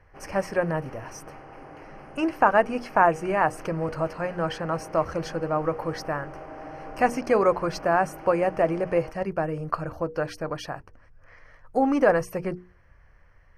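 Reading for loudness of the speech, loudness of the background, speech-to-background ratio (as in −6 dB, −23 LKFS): −25.5 LKFS, −43.0 LKFS, 17.5 dB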